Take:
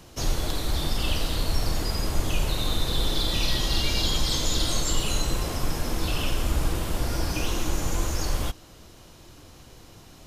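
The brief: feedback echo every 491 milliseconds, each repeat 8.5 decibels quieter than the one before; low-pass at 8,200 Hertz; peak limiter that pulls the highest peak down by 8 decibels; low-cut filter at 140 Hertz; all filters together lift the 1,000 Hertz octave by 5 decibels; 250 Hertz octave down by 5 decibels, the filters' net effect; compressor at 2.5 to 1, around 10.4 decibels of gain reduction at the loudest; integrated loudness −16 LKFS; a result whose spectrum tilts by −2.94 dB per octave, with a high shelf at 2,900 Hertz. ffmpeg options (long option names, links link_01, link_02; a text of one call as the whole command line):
ffmpeg -i in.wav -af "highpass=140,lowpass=8200,equalizer=frequency=250:width_type=o:gain=-7,equalizer=frequency=1000:width_type=o:gain=5.5,highshelf=frequency=2900:gain=8.5,acompressor=threshold=-36dB:ratio=2.5,alimiter=level_in=3.5dB:limit=-24dB:level=0:latency=1,volume=-3.5dB,aecho=1:1:491|982|1473|1964:0.376|0.143|0.0543|0.0206,volume=19dB" out.wav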